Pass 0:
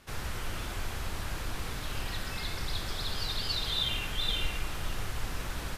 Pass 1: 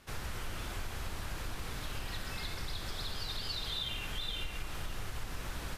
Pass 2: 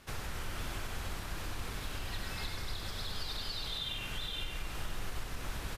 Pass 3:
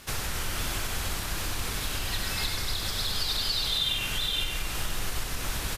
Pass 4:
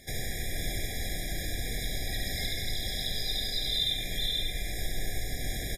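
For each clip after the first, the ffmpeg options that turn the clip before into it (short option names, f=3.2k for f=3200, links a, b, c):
-af "acompressor=threshold=-32dB:ratio=4,volume=-2dB"
-af "alimiter=level_in=7dB:limit=-24dB:level=0:latency=1:release=478,volume=-7dB,aecho=1:1:98:0.562,volume=2dB"
-af "highshelf=f=3.3k:g=9,volume=6.5dB"
-af "aecho=1:1:72:0.596,afftfilt=real='re*eq(mod(floor(b*sr/1024/810),2),0)':imag='im*eq(mod(floor(b*sr/1024/810),2),0)':win_size=1024:overlap=0.75,volume=-2dB"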